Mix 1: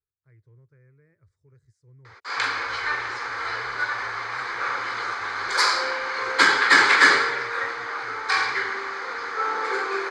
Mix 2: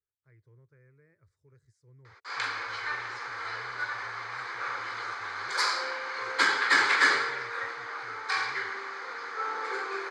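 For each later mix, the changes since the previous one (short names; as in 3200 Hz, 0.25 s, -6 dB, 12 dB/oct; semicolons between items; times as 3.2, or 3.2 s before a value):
background -7.0 dB; master: add low shelf 230 Hz -6 dB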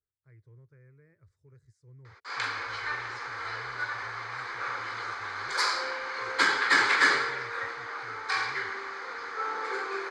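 master: add low shelf 230 Hz +6 dB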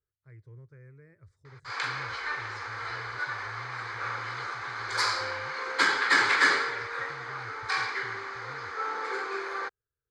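speech +5.5 dB; background: entry -0.60 s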